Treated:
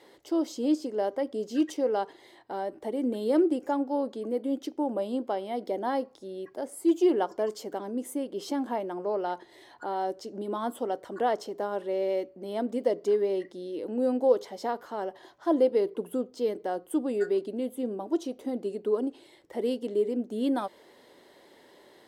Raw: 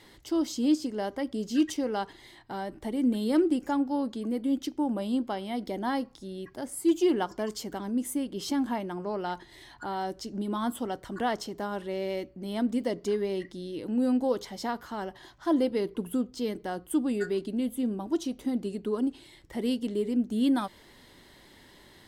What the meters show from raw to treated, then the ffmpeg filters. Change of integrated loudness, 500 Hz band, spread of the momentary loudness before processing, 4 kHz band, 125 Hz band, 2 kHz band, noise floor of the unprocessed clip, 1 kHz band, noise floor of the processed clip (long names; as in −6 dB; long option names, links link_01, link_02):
+0.5 dB, +4.5 dB, 10 LU, −5.0 dB, can't be measured, −3.5 dB, −55 dBFS, +1.5 dB, −57 dBFS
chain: -af "highpass=frequency=340:poles=1,equalizer=frequency=500:width_type=o:width=1.7:gain=13.5,volume=-5.5dB"